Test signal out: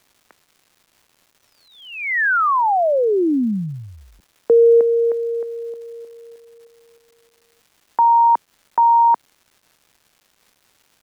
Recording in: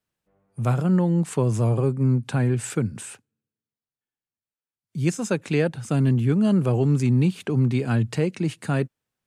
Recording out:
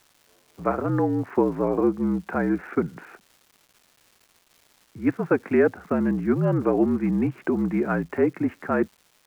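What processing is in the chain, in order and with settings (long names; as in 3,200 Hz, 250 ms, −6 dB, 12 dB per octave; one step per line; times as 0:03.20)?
single-sideband voice off tune −54 Hz 270–2,000 Hz
surface crackle 530 per second −50 dBFS
level +5 dB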